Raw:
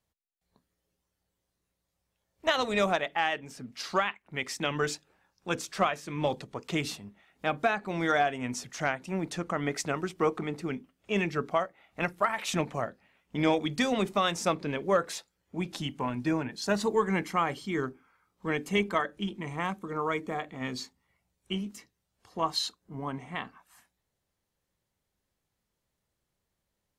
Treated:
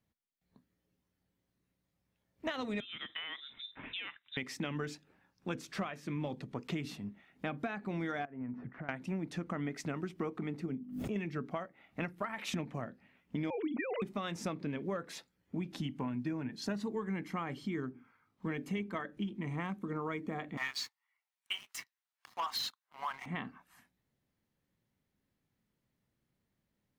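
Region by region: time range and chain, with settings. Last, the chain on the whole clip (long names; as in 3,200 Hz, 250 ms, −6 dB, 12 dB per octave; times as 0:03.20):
0:02.80–0:04.37: downward compressor 5 to 1, threshold −34 dBFS + high-frequency loss of the air 140 metres + voice inversion scrambler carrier 3,800 Hz
0:08.25–0:08.89: low-pass filter 1,600 Hz 24 dB per octave + downward compressor 12 to 1, threshold −41 dBFS
0:10.66–0:11.16: parametric band 2,300 Hz −12.5 dB 2.5 octaves + mains-hum notches 50/100/150/200/250/300 Hz + background raised ahead of every attack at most 95 dB per second
0:13.50–0:14.02: three sine waves on the formant tracks + envelope flattener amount 70%
0:17.89–0:18.64: running median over 3 samples + mains-hum notches 60/120/180/240/300/360/420/480/540/600 Hz
0:20.57–0:23.26: inverse Chebyshev high-pass filter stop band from 260 Hz, stop band 60 dB + leveller curve on the samples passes 3
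whole clip: octave-band graphic EQ 125/250/2,000/8,000 Hz +7/+10/+4/−5 dB; downward compressor 6 to 1, threshold −30 dBFS; level −4.5 dB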